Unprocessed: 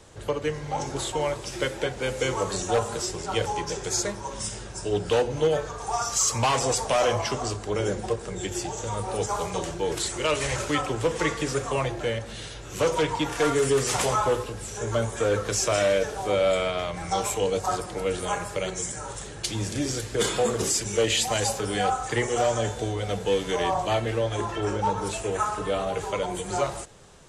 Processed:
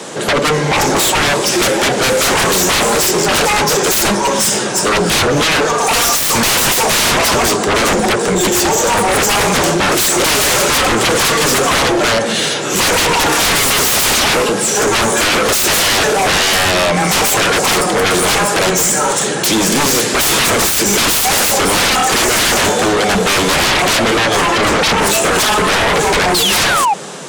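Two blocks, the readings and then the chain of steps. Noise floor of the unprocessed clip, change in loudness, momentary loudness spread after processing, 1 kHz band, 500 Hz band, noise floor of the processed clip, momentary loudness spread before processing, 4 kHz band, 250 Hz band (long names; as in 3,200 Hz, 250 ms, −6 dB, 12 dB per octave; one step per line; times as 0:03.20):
−39 dBFS, +15.0 dB, 2 LU, +14.5 dB, +10.0 dB, −17 dBFS, 8 LU, +19.0 dB, +14.5 dB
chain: Butterworth high-pass 160 Hz 36 dB per octave
sound drawn into the spectrogram fall, 0:26.34–0:26.94, 770–4,600 Hz −34 dBFS
sine wavefolder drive 20 dB, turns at −10.5 dBFS
level +1 dB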